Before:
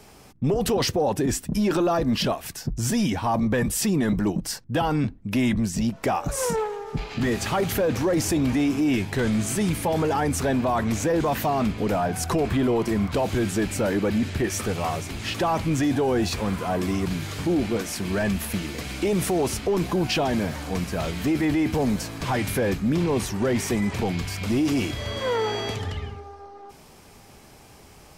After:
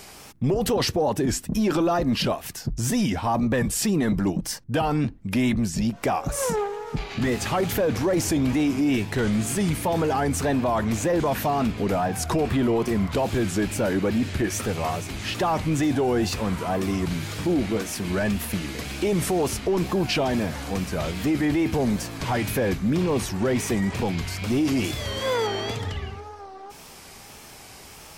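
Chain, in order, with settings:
tape wow and flutter 86 cents
0:24.84–0:25.47: high-shelf EQ 5,500 Hz +9 dB
one half of a high-frequency compander encoder only

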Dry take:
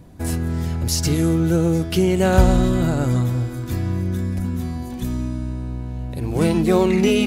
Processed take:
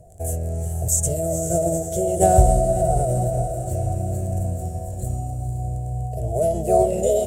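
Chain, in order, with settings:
surface crackle 14 per second −28 dBFS
drawn EQ curve 110 Hz 0 dB, 290 Hz −19 dB, 410 Hz +1 dB, 600 Hz +10 dB, 1,000 Hz −29 dB, 1,700 Hz −19 dB, 4,100 Hz −17 dB, 6,400 Hz +10 dB, 15,000 Hz −10 dB
feedback delay with all-pass diffusion 480 ms, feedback 56%, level −8 dB
formants moved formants +3 semitones
level −1 dB

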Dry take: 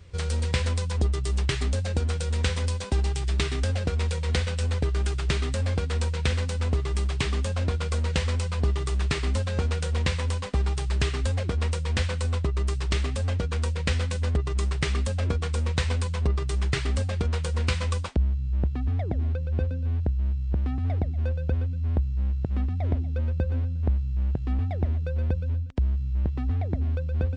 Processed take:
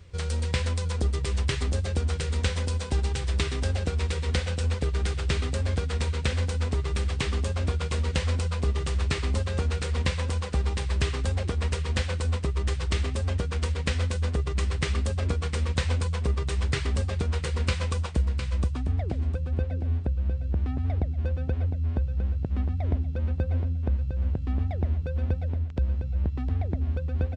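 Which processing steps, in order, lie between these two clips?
reversed playback
upward compression, threshold −32 dBFS
reversed playback
repeating echo 707 ms, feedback 20%, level −8 dB
level −1.5 dB

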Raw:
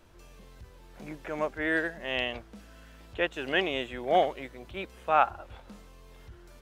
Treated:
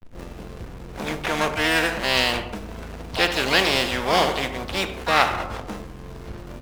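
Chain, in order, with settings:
slack as between gear wheels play −45 dBFS
pitch-shifted copies added +7 semitones −8 dB
on a send at −9 dB: convolution reverb RT60 0.60 s, pre-delay 4 ms
on the sum: every bin compressed towards the loudest bin 2 to 1
level +5 dB

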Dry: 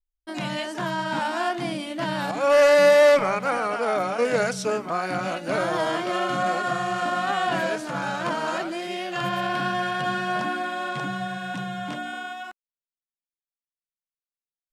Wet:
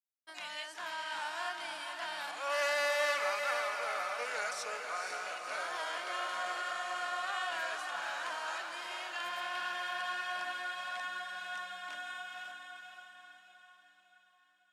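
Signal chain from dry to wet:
high-pass filter 1,100 Hz 12 dB per octave
feedback delay with all-pass diffusion 507 ms, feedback 49%, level −5 dB
level −8.5 dB

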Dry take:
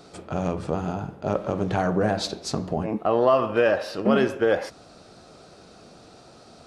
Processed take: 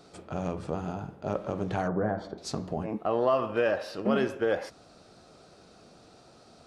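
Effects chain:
0:01.88–0:02.38: Savitzky-Golay smoothing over 41 samples
level −6 dB

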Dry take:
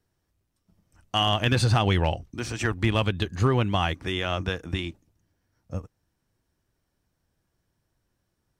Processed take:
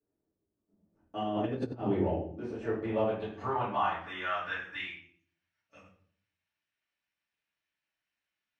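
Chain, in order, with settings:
rectangular room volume 71 cubic metres, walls mixed, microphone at 2.5 metres
0:01.22–0:01.86: compressor whose output falls as the input rises −13 dBFS, ratio −0.5
band-pass filter sweep 380 Hz → 2,500 Hz, 0:02.34–0:05.24
level −8.5 dB

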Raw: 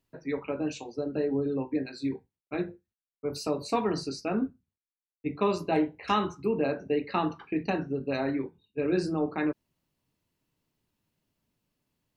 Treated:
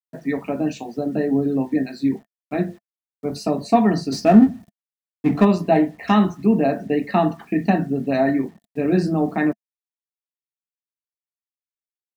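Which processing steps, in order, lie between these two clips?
0:04.12–0:05.45: power curve on the samples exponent 0.7
bit-depth reduction 10 bits, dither none
hollow resonant body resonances 210/680/1,800 Hz, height 14 dB, ringing for 35 ms
level +3 dB

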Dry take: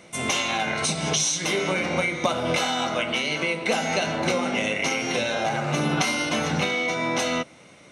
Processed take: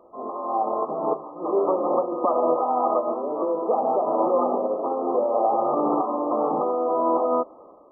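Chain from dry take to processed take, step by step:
high-pass filter 320 Hz 24 dB per octave
brickwall limiter −17.5 dBFS, peak gain reduction 8.5 dB
automatic gain control gain up to 7.5 dB
surface crackle 240 per second −40 dBFS
linear-phase brick-wall low-pass 1,300 Hz

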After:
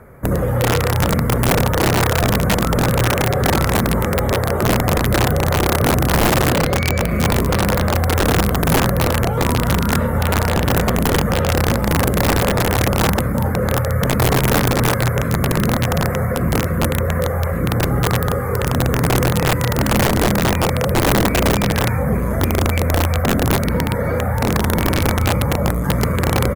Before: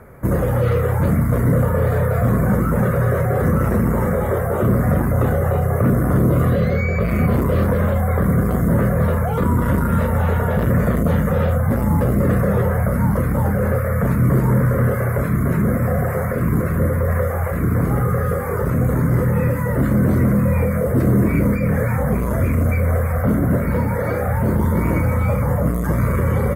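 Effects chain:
slap from a distant wall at 67 metres, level −8 dB
wrap-around overflow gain 10 dB

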